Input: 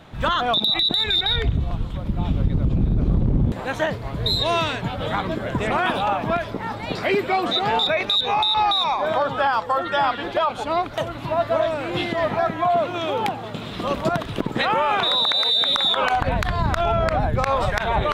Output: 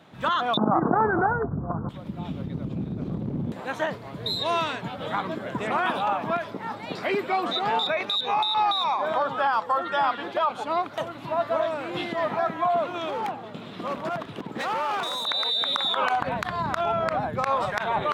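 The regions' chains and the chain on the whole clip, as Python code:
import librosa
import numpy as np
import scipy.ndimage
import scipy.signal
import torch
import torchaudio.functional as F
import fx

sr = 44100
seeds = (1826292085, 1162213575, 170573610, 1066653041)

y = fx.chain(x, sr, fx.steep_lowpass(hz=1500.0, slope=72),
    fx.env_flatten(amount_pct=100), at=(0.57, 1.89))
y = fx.chain(y, sr, fx.high_shelf(hz=3700.0, db=-7.0),
    fx.clip_hard(threshold_db=-21.0), at=(13.09, 15.27))
y = scipy.signal.sosfilt(scipy.signal.cheby1(2, 1.0, 180.0, 'highpass', fs=sr, output='sos'), y)
y = fx.dynamic_eq(y, sr, hz=1100.0, q=1.3, threshold_db=-33.0, ratio=4.0, max_db=5)
y = y * 10.0 ** (-5.5 / 20.0)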